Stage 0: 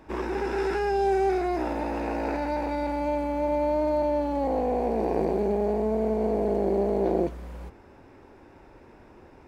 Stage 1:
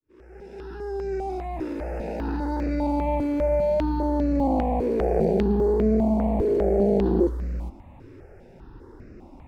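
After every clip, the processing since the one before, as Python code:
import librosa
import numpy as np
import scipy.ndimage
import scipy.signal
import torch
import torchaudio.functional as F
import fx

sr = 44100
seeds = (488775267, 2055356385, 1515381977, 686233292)

y = fx.fade_in_head(x, sr, length_s=3.14)
y = fx.low_shelf(y, sr, hz=430.0, db=10.5)
y = fx.phaser_held(y, sr, hz=5.0, low_hz=200.0, high_hz=3300.0)
y = y * librosa.db_to_amplitude(1.0)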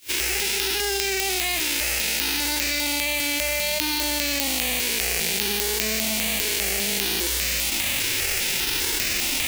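y = fx.envelope_flatten(x, sr, power=0.3)
y = fx.high_shelf_res(y, sr, hz=1700.0, db=11.5, q=1.5)
y = fx.env_flatten(y, sr, amount_pct=100)
y = y * librosa.db_to_amplitude(-12.5)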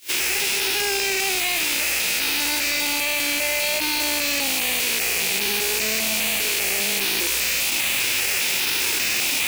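y = fx.rattle_buzz(x, sr, strikes_db=-46.0, level_db=-12.0)
y = fx.highpass(y, sr, hz=280.0, slope=6)
y = np.clip(10.0 ** (21.0 / 20.0) * y, -1.0, 1.0) / 10.0 ** (21.0 / 20.0)
y = y * librosa.db_to_amplitude(3.0)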